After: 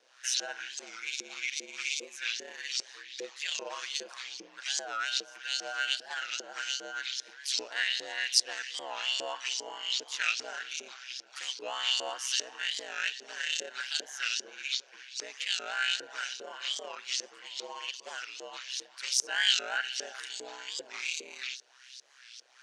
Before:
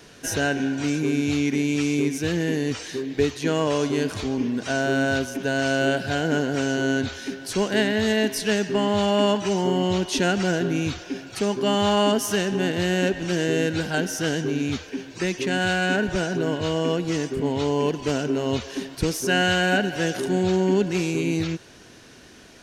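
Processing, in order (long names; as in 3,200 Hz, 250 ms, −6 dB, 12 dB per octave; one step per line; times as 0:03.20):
ring modulation 64 Hz
spectral tilt +2.5 dB per octave
auto-filter band-pass saw up 2.5 Hz 390–5,400 Hz
meter weighting curve ITU-R 468
wow of a warped record 45 rpm, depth 160 cents
level −4 dB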